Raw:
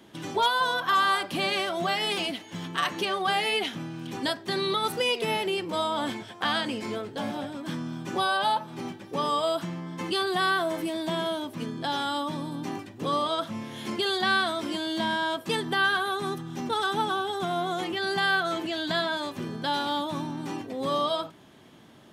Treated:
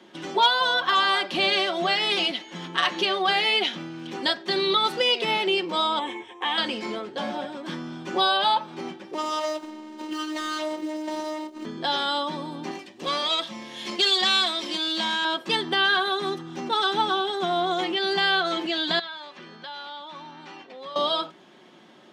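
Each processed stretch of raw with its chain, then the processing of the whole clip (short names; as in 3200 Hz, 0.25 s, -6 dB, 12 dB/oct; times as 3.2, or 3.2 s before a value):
5.99–6.58 brick-wall FIR low-pass 11000 Hz + fixed phaser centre 950 Hz, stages 8
9.14–11.65 median filter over 25 samples + high shelf 4500 Hz +10.5 dB + robotiser 309 Hz
12.71–15.25 high shelf 2200 Hz +9.5 dB + notch 1400 Hz, Q 6.1 + tube stage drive 17 dB, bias 0.75
18.99–20.96 BPF 140–4500 Hz + bell 300 Hz -13 dB 2.6 oct + compressor 2.5:1, threshold -40 dBFS
whole clip: three-band isolator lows -22 dB, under 200 Hz, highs -17 dB, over 6900 Hz; comb 5.5 ms, depth 39%; dynamic EQ 3800 Hz, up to +5 dB, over -41 dBFS, Q 1.2; gain +2.5 dB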